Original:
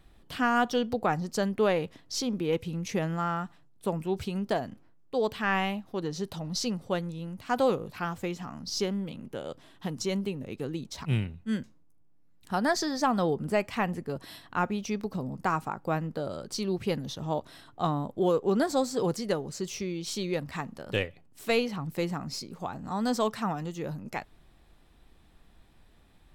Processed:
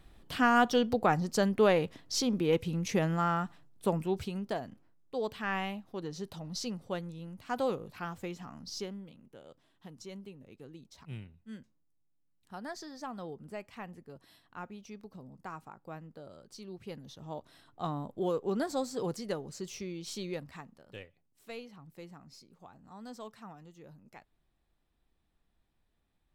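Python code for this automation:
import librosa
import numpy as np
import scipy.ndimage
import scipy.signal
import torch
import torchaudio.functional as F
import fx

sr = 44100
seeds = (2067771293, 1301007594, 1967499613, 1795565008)

y = fx.gain(x, sr, db=fx.line((3.94, 0.5), (4.47, -6.5), (8.64, -6.5), (9.19, -15.5), (16.7, -15.5), (17.98, -6.5), (20.29, -6.5), (20.9, -18.0)))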